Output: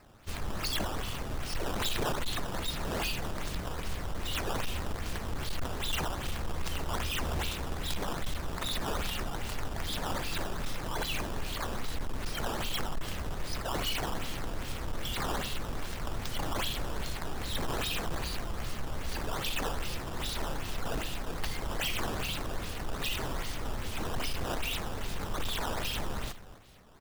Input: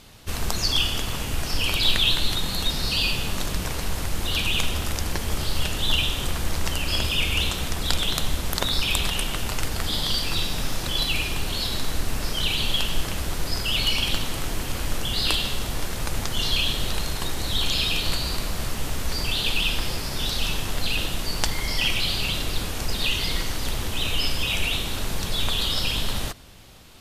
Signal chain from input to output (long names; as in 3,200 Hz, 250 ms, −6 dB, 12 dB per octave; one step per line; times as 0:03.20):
slap from a distant wall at 45 metres, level −14 dB
sample-and-hold swept by an LFO 12×, swing 160% 2.5 Hz
gain into a clipping stage and back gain 18 dB
level −8.5 dB